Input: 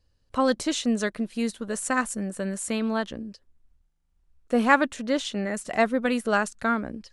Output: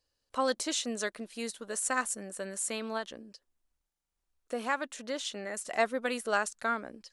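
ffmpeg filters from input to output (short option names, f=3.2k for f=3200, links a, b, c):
-filter_complex "[0:a]asettb=1/sr,asplit=3[a][b][c];[a]atrim=end=2.974[d];[b]atrim=start=2.97:end=5.74,asetpts=PTS-STARTPTS,afade=t=in:d=0.004:c=qsin,afade=t=out:st=2.766:d=0.004:c=qsin,acompressor=threshold=-26dB:ratio=2[e];[c]atrim=start=5.736[f];[d][e]acrossfade=d=0.004:c1=hsin:c2=qsin[g];[g][f]acrossfade=d=0.004:c1=qsin:c2=hsin,bass=f=250:g=-15,treble=f=4k:g=5,volume=-5dB"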